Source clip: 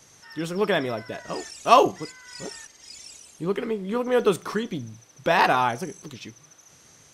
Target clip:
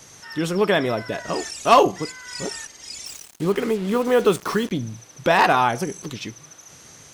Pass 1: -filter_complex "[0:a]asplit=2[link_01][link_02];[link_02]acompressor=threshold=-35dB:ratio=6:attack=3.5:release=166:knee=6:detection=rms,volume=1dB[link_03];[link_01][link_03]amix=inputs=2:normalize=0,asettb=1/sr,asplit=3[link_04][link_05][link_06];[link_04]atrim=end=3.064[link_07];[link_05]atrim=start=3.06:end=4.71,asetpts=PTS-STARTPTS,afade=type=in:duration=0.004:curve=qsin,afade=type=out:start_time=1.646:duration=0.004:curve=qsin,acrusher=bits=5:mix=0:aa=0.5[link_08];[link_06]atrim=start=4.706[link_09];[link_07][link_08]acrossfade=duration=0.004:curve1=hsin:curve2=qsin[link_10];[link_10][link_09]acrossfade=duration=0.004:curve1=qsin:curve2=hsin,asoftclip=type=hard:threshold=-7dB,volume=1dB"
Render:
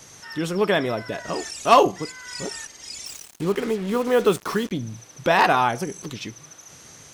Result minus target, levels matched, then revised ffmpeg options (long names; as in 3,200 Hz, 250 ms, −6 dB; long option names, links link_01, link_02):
downward compressor: peak gain reduction +7 dB
-filter_complex "[0:a]asplit=2[link_01][link_02];[link_02]acompressor=threshold=-26.5dB:ratio=6:attack=3.5:release=166:knee=6:detection=rms,volume=1dB[link_03];[link_01][link_03]amix=inputs=2:normalize=0,asettb=1/sr,asplit=3[link_04][link_05][link_06];[link_04]atrim=end=3.064[link_07];[link_05]atrim=start=3.06:end=4.71,asetpts=PTS-STARTPTS,afade=type=in:duration=0.004:curve=qsin,afade=type=out:start_time=1.646:duration=0.004:curve=qsin,acrusher=bits=5:mix=0:aa=0.5[link_08];[link_06]atrim=start=4.706[link_09];[link_07][link_08]acrossfade=duration=0.004:curve1=hsin:curve2=qsin[link_10];[link_10][link_09]acrossfade=duration=0.004:curve1=qsin:curve2=hsin,asoftclip=type=hard:threshold=-7dB,volume=1dB"